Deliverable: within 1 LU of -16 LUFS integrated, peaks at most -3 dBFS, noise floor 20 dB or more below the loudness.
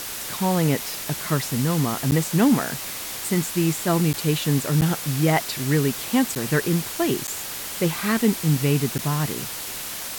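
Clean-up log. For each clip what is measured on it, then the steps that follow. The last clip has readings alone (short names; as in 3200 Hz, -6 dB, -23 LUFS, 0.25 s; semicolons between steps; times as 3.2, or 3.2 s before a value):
dropouts 6; longest dropout 9.1 ms; noise floor -32 dBFS; noise floor target -43 dBFS; loudness -23.0 LUFS; peak -6.5 dBFS; loudness target -16.0 LUFS
-> interpolate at 2.11/4.13/4.81/6.35/7.27/8.98, 9.1 ms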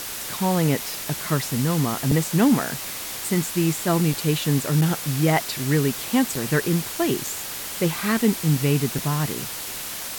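dropouts 0; noise floor -32 dBFS; noise floor target -43 dBFS
-> denoiser 11 dB, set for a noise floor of -32 dBFS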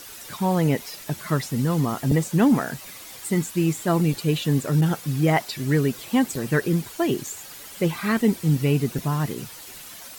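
noise floor -41 dBFS; noise floor target -44 dBFS
-> denoiser 6 dB, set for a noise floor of -41 dBFS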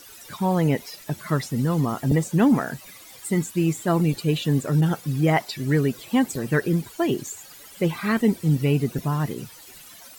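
noise floor -46 dBFS; loudness -23.5 LUFS; peak -7.0 dBFS; loudness target -16.0 LUFS
-> gain +7.5 dB; limiter -3 dBFS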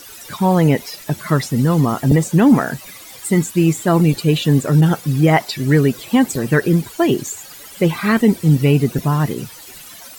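loudness -16.0 LUFS; peak -3.0 dBFS; noise floor -38 dBFS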